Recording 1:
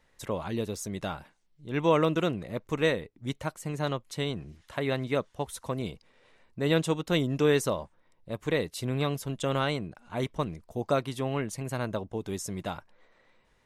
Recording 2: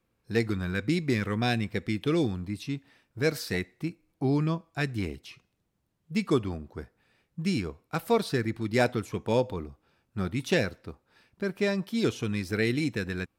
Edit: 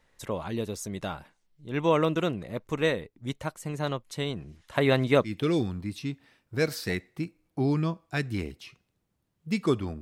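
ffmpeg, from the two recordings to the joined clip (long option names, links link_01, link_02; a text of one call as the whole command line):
ffmpeg -i cue0.wav -i cue1.wav -filter_complex "[0:a]asplit=3[link_01][link_02][link_03];[link_01]afade=type=out:start_time=4.74:duration=0.02[link_04];[link_02]acontrast=70,afade=type=in:start_time=4.74:duration=0.02,afade=type=out:start_time=5.34:duration=0.02[link_05];[link_03]afade=type=in:start_time=5.34:duration=0.02[link_06];[link_04][link_05][link_06]amix=inputs=3:normalize=0,apad=whole_dur=10.01,atrim=end=10.01,atrim=end=5.34,asetpts=PTS-STARTPTS[link_07];[1:a]atrim=start=1.86:end=6.65,asetpts=PTS-STARTPTS[link_08];[link_07][link_08]acrossfade=duration=0.12:curve1=tri:curve2=tri" out.wav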